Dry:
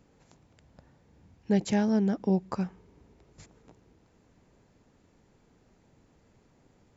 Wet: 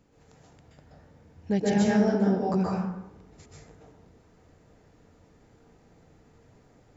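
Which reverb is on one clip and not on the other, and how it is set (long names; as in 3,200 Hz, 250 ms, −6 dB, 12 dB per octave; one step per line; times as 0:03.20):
dense smooth reverb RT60 0.86 s, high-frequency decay 0.5×, pre-delay 115 ms, DRR −5.5 dB
level −1.5 dB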